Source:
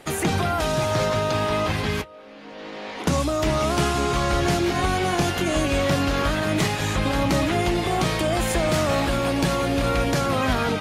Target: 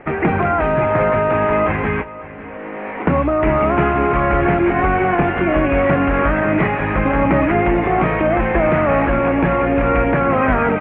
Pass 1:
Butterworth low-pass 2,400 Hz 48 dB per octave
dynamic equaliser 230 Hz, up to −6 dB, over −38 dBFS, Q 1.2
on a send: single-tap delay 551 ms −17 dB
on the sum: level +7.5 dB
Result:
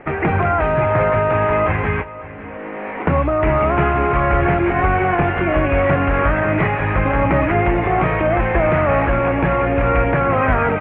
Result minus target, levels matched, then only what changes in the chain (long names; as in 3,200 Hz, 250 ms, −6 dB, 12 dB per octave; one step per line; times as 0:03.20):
125 Hz band +2.5 dB
change: dynamic equaliser 100 Hz, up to −6 dB, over −38 dBFS, Q 1.2